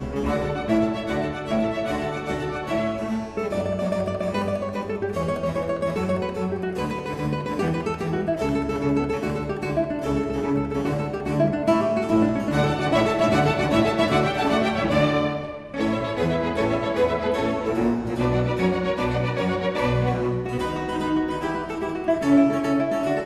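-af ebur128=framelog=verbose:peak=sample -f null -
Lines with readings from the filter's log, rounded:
Integrated loudness:
  I:         -23.7 LUFS
  Threshold: -33.7 LUFS
Loudness range:
  LRA:         5.2 LU
  Threshold: -43.8 LUFS
  LRA low:   -26.2 LUFS
  LRA high:  -21.0 LUFS
Sample peak:
  Peak:       -6.9 dBFS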